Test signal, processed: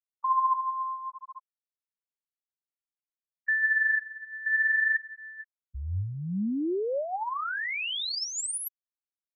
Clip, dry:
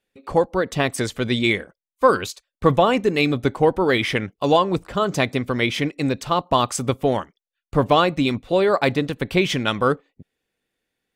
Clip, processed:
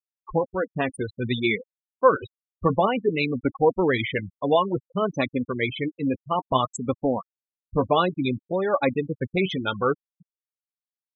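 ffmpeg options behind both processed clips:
ffmpeg -i in.wav -af "flanger=delay=3.5:depth=7.9:regen=44:speed=0.57:shape=sinusoidal,afftfilt=real='re*gte(hypot(re,im),0.0891)':imag='im*gte(hypot(re,im),0.0891)':win_size=1024:overlap=0.75" out.wav

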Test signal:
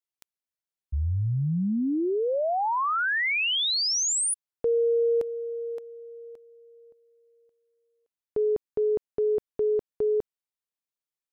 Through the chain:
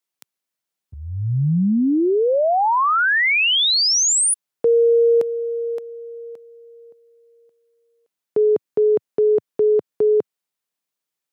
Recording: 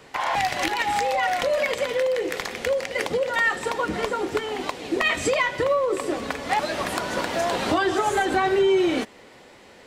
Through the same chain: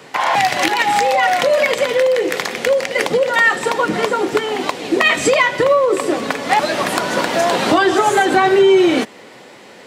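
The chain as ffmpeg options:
ffmpeg -i in.wav -af "highpass=frequency=120:width=0.5412,highpass=frequency=120:width=1.3066,volume=8.5dB" out.wav

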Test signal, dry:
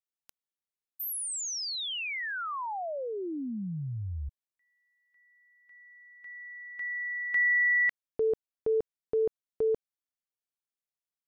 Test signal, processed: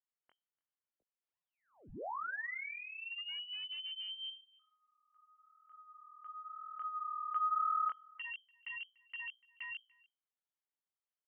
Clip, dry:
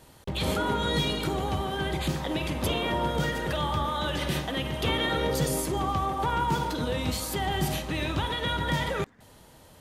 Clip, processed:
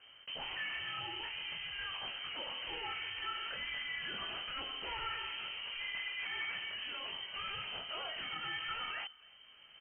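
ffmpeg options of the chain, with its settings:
ffmpeg -i in.wav -filter_complex "[0:a]equalizer=frequency=630:width_type=o:width=1.1:gain=-11,bandreject=frequency=60:width_type=h:width=6,bandreject=frequency=120:width_type=h:width=6,bandreject=frequency=180:width_type=h:width=6,asplit=2[link_01][link_02];[link_02]acompressor=threshold=-44dB:ratio=6:attack=39:release=603:detection=rms,volume=-1dB[link_03];[link_01][link_03]amix=inputs=2:normalize=0,asoftclip=type=tanh:threshold=-20dB,flanger=delay=17.5:depth=7.3:speed=0.94,acrossover=split=990[link_04][link_05];[link_04]aeval=exprs='0.0178*(abs(mod(val(0)/0.0178+3,4)-2)-1)':channel_layout=same[link_06];[link_06][link_05]amix=inputs=2:normalize=0,asplit=2[link_07][link_08];[link_08]adelay=291.5,volume=-25dB,highshelf=frequency=4000:gain=-6.56[link_09];[link_07][link_09]amix=inputs=2:normalize=0,lowpass=frequency=2700:width_type=q:width=0.5098,lowpass=frequency=2700:width_type=q:width=0.6013,lowpass=frequency=2700:width_type=q:width=0.9,lowpass=frequency=2700:width_type=q:width=2.563,afreqshift=-3200,volume=-4dB" out.wav

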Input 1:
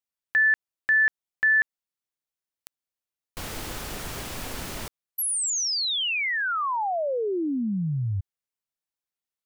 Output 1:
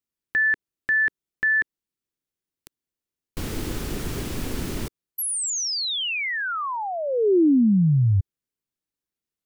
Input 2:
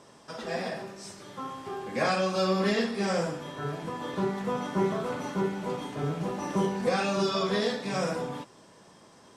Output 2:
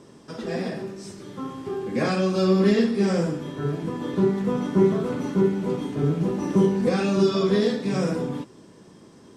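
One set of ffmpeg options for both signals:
ffmpeg -i in.wav -af "lowshelf=frequency=490:width_type=q:width=1.5:gain=8" out.wav

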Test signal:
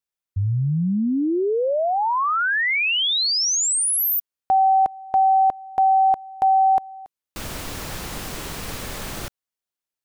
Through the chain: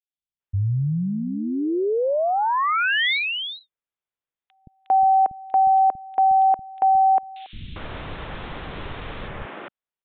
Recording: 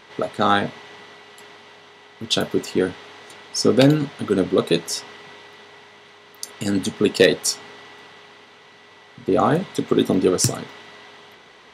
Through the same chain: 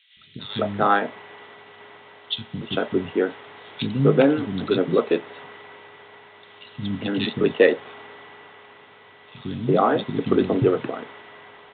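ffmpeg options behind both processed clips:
ffmpeg -i in.wav -filter_complex "[0:a]acrossover=split=230|2900[link_01][link_02][link_03];[link_01]adelay=170[link_04];[link_02]adelay=400[link_05];[link_04][link_05][link_03]amix=inputs=3:normalize=0,aresample=8000,aresample=44100" out.wav

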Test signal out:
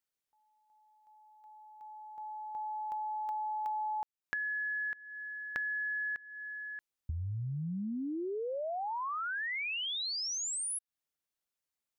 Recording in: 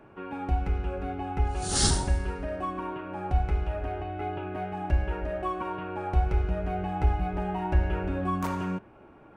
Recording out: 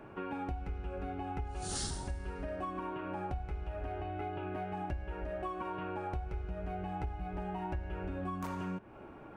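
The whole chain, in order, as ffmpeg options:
ffmpeg -i in.wav -af "acompressor=threshold=-38dB:ratio=6,volume=2dB" out.wav

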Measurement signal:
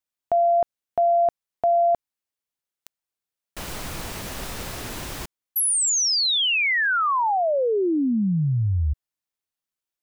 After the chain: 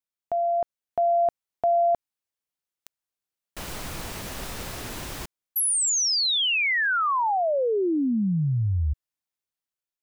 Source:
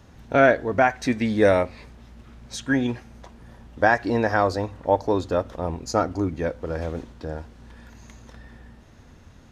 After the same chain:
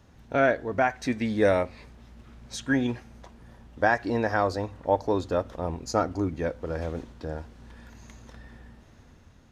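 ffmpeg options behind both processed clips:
ffmpeg -i in.wav -af "dynaudnorm=framelen=330:gausssize=5:maxgain=4dB,volume=-6dB" out.wav

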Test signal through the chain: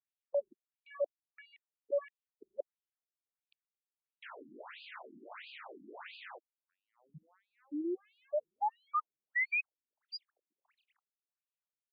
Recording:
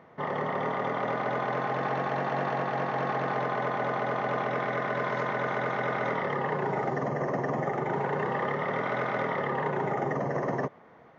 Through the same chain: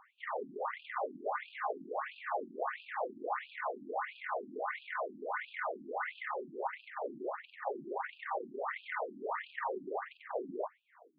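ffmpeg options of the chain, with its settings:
ffmpeg -i in.wav -filter_complex "[0:a]aeval=exprs='clip(val(0),-1,0.0501)':channel_layout=same,acrossover=split=370 3300:gain=0.224 1 0.158[link_01][link_02][link_03];[link_01][link_02][link_03]amix=inputs=3:normalize=0,afftfilt=real='re*between(b*sr/1024,240*pow(3500/240,0.5+0.5*sin(2*PI*1.5*pts/sr))/1.41,240*pow(3500/240,0.5+0.5*sin(2*PI*1.5*pts/sr))*1.41)':imag='im*between(b*sr/1024,240*pow(3500/240,0.5+0.5*sin(2*PI*1.5*pts/sr))/1.41,240*pow(3500/240,0.5+0.5*sin(2*PI*1.5*pts/sr))*1.41)':win_size=1024:overlap=0.75" out.wav

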